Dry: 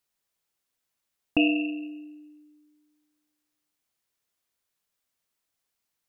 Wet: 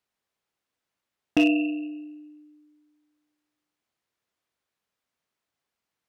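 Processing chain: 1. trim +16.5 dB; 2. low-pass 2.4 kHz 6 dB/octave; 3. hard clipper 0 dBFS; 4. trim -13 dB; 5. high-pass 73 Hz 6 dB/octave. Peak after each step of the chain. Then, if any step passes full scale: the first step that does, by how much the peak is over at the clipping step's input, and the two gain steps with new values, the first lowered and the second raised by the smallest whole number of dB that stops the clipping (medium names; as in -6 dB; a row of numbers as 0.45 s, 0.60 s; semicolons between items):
+8.0 dBFS, +6.5 dBFS, 0.0 dBFS, -13.0 dBFS, -11.0 dBFS; step 1, 6.5 dB; step 1 +9.5 dB, step 4 -6 dB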